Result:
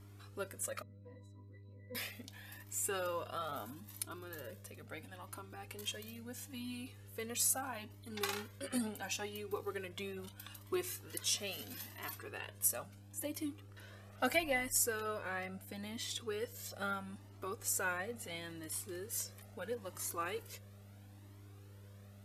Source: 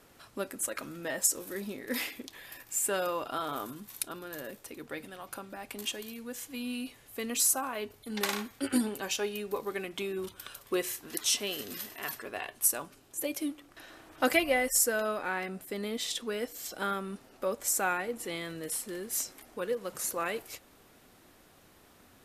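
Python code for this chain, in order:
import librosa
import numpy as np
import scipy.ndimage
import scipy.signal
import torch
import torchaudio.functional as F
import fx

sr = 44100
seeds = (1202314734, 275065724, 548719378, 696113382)

y = fx.octave_resonator(x, sr, note='B', decay_s=0.23, at=(0.82, 1.95))
y = fx.dmg_buzz(y, sr, base_hz=100.0, harmonics=6, level_db=-50.0, tilt_db=-8, odd_only=False)
y = fx.comb_cascade(y, sr, direction='rising', hz=0.75)
y = y * 10.0 ** (-2.5 / 20.0)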